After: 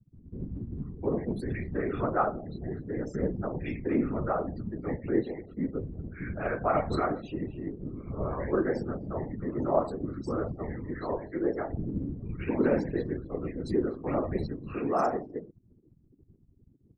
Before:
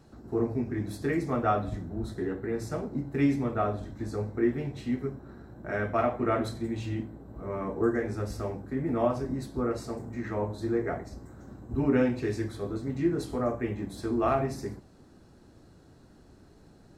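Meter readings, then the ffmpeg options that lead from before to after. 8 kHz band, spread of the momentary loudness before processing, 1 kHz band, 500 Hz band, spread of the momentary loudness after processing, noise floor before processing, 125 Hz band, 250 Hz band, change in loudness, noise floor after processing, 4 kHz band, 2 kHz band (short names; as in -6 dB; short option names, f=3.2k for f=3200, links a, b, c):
under -10 dB, 10 LU, 0.0 dB, 0.0 dB, 10 LU, -56 dBFS, -1.5 dB, -1.5 dB, -1.5 dB, -62 dBFS, -5.5 dB, -2.0 dB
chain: -filter_complex "[0:a]afftfilt=real='re*gte(hypot(re,im),0.0112)':imag='im*gte(hypot(re,im),0.0112)':win_size=1024:overlap=0.75,acrossover=split=210|2000[a][b][c];[c]adelay=460[d];[b]adelay=710[e];[a][e][d]amix=inputs=3:normalize=0,afftfilt=real='hypot(re,im)*cos(2*PI*random(0))':imag='hypot(re,im)*sin(2*PI*random(1))':win_size=512:overlap=0.75,volume=6.5dB"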